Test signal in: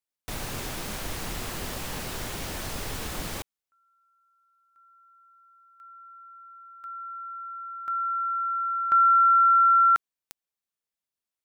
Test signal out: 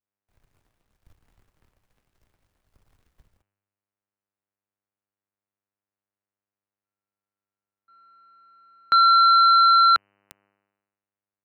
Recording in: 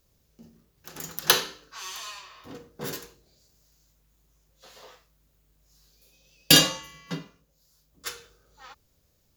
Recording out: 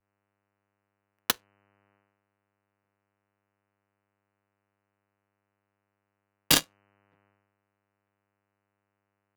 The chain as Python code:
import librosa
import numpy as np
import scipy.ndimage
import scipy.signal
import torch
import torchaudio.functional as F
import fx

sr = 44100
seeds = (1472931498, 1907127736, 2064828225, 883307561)

y = fx.power_curve(x, sr, exponent=3.0)
y = fx.dmg_buzz(y, sr, base_hz=100.0, harmonics=30, level_db=-74.0, tilt_db=-2, odd_only=False)
y = fx.band_widen(y, sr, depth_pct=100)
y = y * 10.0 ** (-4.0 / 20.0)